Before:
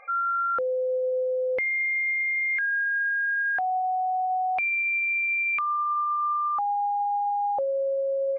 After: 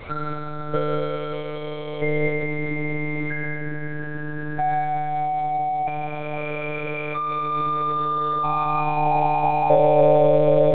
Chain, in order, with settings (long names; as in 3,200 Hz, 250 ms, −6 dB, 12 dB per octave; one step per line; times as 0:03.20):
linear delta modulator 32 kbit/s, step −42 dBFS
parametric band 300 Hz +13 dB 1.4 octaves
in parallel at 0 dB: brickwall limiter −32.5 dBFS, peak gain reduction 16.5 dB
on the sum: noise in a band 190–910 Hz −47 dBFS
high-pass filter sweep 180 Hz → 570 Hz, 0:06.47–0:07.27
on a send at −5 dB: convolution reverb RT60 1.5 s, pre-delay 145 ms
on the sum: one-pitch LPC vocoder at 8 kHz 150 Hz
tempo change 0.78×